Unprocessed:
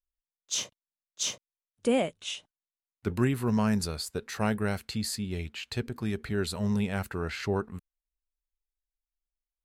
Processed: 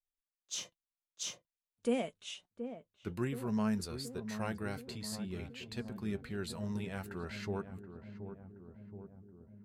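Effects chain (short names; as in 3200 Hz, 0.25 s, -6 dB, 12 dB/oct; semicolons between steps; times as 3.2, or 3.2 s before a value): flange 0.52 Hz, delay 4.1 ms, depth 2.5 ms, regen +62%; on a send: darkening echo 0.725 s, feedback 72%, low-pass 810 Hz, level -9 dB; on the sum: gain -5 dB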